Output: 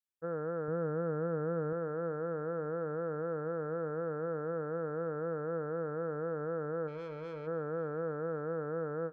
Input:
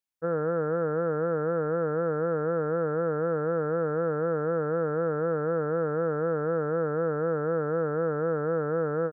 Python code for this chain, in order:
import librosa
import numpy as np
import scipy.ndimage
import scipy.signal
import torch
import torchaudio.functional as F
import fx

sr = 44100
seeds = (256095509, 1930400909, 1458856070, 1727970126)

y = fx.low_shelf(x, sr, hz=220.0, db=9.0, at=(0.68, 1.73))
y = fx.tube_stage(y, sr, drive_db=30.0, bias=0.45, at=(6.87, 7.46), fade=0.02)
y = fx.echo_feedback(y, sr, ms=540, feedback_pct=52, wet_db=-20.5)
y = y * 10.0 ** (-9.0 / 20.0)